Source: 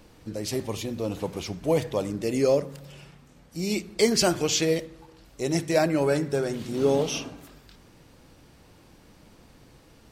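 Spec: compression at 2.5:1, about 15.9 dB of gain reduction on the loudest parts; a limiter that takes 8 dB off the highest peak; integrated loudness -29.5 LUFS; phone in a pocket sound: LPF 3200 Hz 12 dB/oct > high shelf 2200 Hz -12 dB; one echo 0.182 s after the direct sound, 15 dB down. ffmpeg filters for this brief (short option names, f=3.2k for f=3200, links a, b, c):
-af "acompressor=threshold=-42dB:ratio=2.5,alimiter=level_in=7dB:limit=-24dB:level=0:latency=1,volume=-7dB,lowpass=3.2k,highshelf=f=2.2k:g=-12,aecho=1:1:182:0.178,volume=14dB"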